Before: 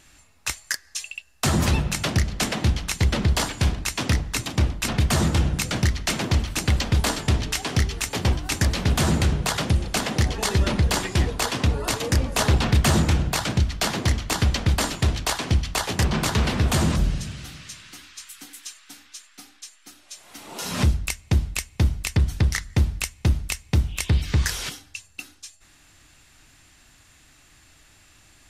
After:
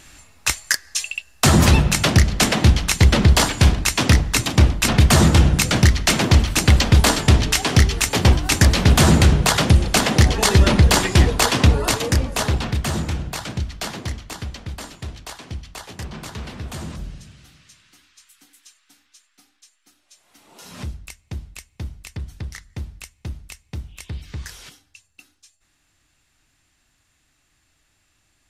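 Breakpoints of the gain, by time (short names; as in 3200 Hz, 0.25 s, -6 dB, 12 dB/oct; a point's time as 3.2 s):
11.7 s +7.5 dB
12.8 s -4.5 dB
13.89 s -4.5 dB
14.56 s -11 dB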